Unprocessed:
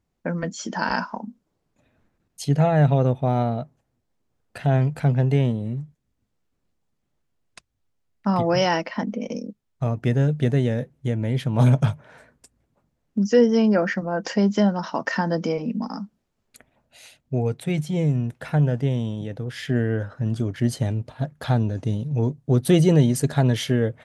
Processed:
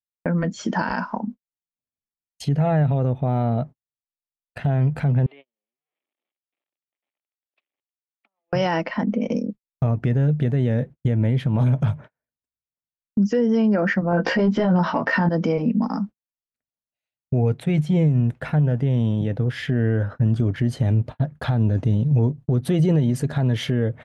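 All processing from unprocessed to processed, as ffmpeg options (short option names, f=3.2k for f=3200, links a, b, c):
-filter_complex "[0:a]asettb=1/sr,asplit=3[a][b][c];[a]atrim=end=5.264[d];[b]atrim=start=5.26:end=8.53,asetpts=PTS-STARTPTS,afade=t=in:d=0.004:c=qsin,afade=t=out:st=3.266:d=0.004:c=qsin,aeval=exprs='val(0)+0.5*0.0282*sgn(val(0))':c=same,acompressor=threshold=-35dB:ratio=5:attack=3.2:release=140:knee=1:detection=peak,highpass=f=420:w=0.5412,highpass=f=420:w=1.3066,equalizer=f=450:t=q:w=4:g=-10,equalizer=f=720:t=q:w=4:g=-3,equalizer=f=1k:t=q:w=4:g=-8,equalizer=f=1.5k:t=q:w=4:g=-10,equalizer=f=2.3k:t=q:w=4:g=4,equalizer=f=3.3k:t=q:w=4:g=5,lowpass=f=3.4k:w=0.5412,lowpass=f=3.4k:w=1.3066[e];[c]atrim=start=8.526[f];[d][e]acrossfade=d=0.004:c1=hsin:c2=qsin[g];[g][f]acrossfade=d=0.004:c1=qsin:c2=hsin,asettb=1/sr,asplit=3[h][i][j];[h]atrim=end=14.114[k];[i]atrim=start=14.11:end=15.29,asetpts=PTS-STARTPTS,afade=t=in:d=0.004:c=qsin,afade=t=out:st=1.176:d=0.004:c=qsin,equalizer=f=6.7k:w=2.8:g=-12.5,acontrast=82,asplit=2[l][m];[m]adelay=17,volume=-2dB[n];[l][n]amix=inputs=2:normalize=0,atrim=end_sample=52038[o];[j]atrim=start=15.286[p];[k][o]acrossfade=d=0.004:c1=hsin:c2=qsin[q];[q][p]acrossfade=d=0.004:c1=qsin:c2=hsin,agate=range=-46dB:threshold=-38dB:ratio=16:detection=peak,bass=f=250:g=4,treble=f=4k:g=-11,alimiter=limit=-17dB:level=0:latency=1:release=147,volume=5dB"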